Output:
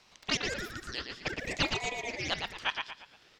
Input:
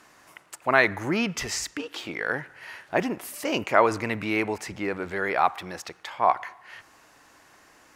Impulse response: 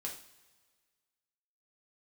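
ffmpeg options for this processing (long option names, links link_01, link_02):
-filter_complex "[0:a]lowpass=1900,equalizer=frequency=780:width_type=o:width=0.77:gain=-3,asplit=2[link_01][link_02];[link_02]adelay=271,lowpass=frequency=1400:poles=1,volume=-3dB,asplit=2[link_03][link_04];[link_04]adelay=271,lowpass=frequency=1400:poles=1,volume=0.39,asplit=2[link_05][link_06];[link_06]adelay=271,lowpass=frequency=1400:poles=1,volume=0.39,asplit=2[link_07][link_08];[link_08]adelay=271,lowpass=frequency=1400:poles=1,volume=0.39,asplit=2[link_09][link_10];[link_10]adelay=271,lowpass=frequency=1400:poles=1,volume=0.39[link_11];[link_01][link_03][link_05][link_07][link_09][link_11]amix=inputs=6:normalize=0,asetrate=103194,aresample=44100,asplit=2[link_12][link_13];[link_13]acompressor=threshold=-39dB:ratio=6,volume=-3dB[link_14];[link_12][link_14]amix=inputs=2:normalize=0,highpass=520,aeval=exprs='val(0)*sin(2*PI*1100*n/s+1100*0.35/0.53*sin(2*PI*0.53*n/s))':channel_layout=same,volume=-5.5dB"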